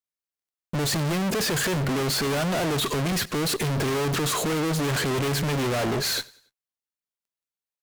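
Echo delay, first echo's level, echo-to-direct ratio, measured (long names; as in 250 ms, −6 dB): 94 ms, −23.0 dB, −22.0 dB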